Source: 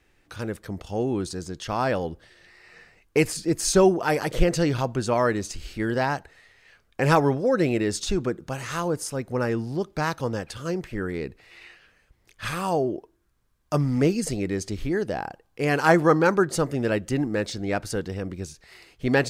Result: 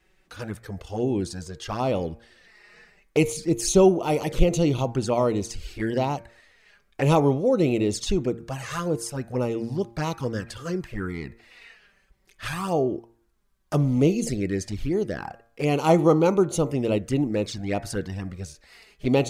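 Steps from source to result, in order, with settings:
flanger swept by the level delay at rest 5.5 ms, full sweep at −21 dBFS
hum removal 115.7 Hz, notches 22
level +2 dB

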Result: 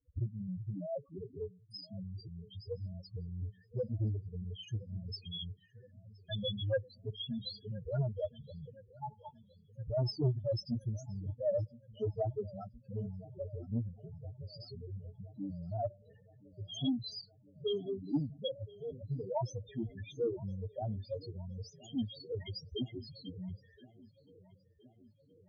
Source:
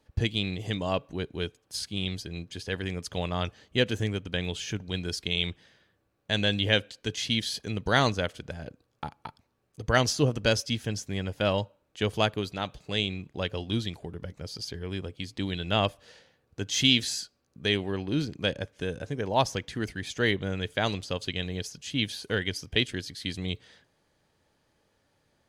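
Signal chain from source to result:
log-companded quantiser 8 bits
spectral peaks only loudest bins 2
flanger 0.12 Hz, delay 6.4 ms, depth 2.7 ms, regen +27%
on a send: feedback echo with a low-pass in the loop 1,019 ms, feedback 67%, low-pass 2,500 Hz, level −21 dB
on the sum: saturating transformer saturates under 220 Hz
level +2 dB

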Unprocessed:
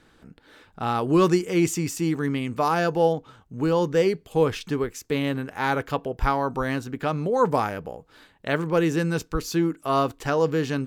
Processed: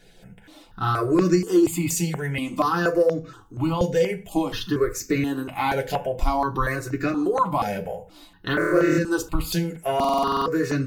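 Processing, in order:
spectral magnitudes quantised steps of 15 dB
0:08.54–0:08.98: flutter between parallel walls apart 4.4 metres, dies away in 1.3 s
downward compressor, threshold −23 dBFS, peak gain reduction 9.5 dB
on a send at −1.5 dB: high-shelf EQ 4,700 Hz +6.5 dB + convolution reverb RT60 0.35 s, pre-delay 3 ms
on the sum: buffer that repeats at 0:09.95, samples 2,048, times 10
step-sequenced phaser 4.2 Hz 310–3,200 Hz
level +5.5 dB

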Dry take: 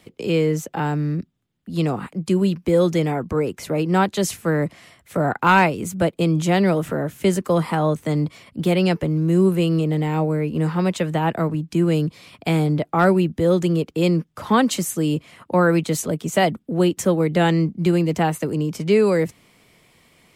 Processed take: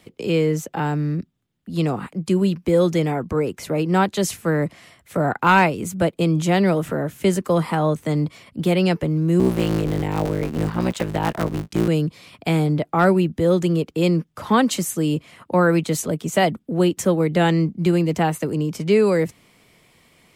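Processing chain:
0:09.39–0:11.88: sub-harmonics by changed cycles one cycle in 3, muted

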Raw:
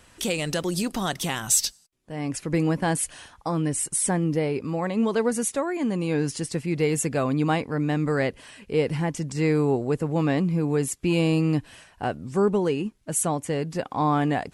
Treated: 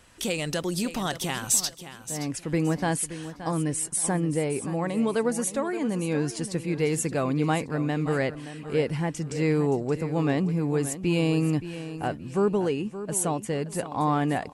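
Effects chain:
repeating echo 573 ms, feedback 28%, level −12.5 dB
level −2 dB

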